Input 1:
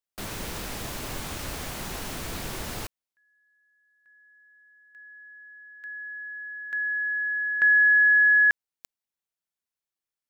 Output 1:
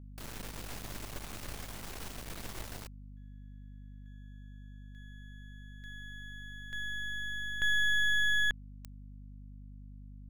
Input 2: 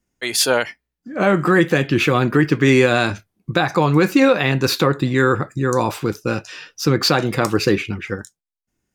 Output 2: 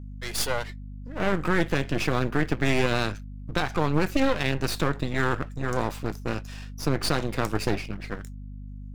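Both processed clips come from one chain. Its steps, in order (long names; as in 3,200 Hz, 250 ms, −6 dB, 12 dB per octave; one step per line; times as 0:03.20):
half-wave rectification
mains hum 50 Hz, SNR 12 dB
level −6 dB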